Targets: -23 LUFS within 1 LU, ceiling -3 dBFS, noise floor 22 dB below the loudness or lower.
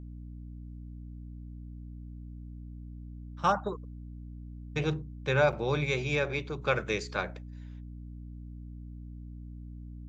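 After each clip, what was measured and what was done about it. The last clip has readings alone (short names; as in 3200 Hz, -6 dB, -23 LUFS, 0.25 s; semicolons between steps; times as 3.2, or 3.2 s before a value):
dropouts 1; longest dropout 6.9 ms; hum 60 Hz; harmonics up to 300 Hz; hum level -41 dBFS; loudness -30.5 LUFS; peak -11.5 dBFS; loudness target -23.0 LUFS
-> interpolate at 5.52, 6.9 ms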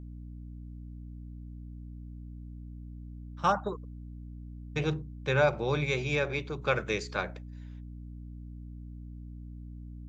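dropouts 0; hum 60 Hz; harmonics up to 300 Hz; hum level -41 dBFS
-> notches 60/120/180/240/300 Hz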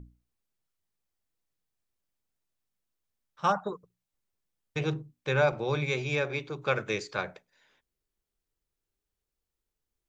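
hum none; loudness -30.5 LUFS; peak -12.0 dBFS; loudness target -23.0 LUFS
-> gain +7.5 dB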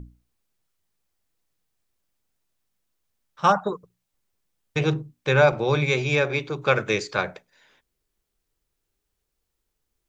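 loudness -23.0 LUFS; peak -4.5 dBFS; noise floor -80 dBFS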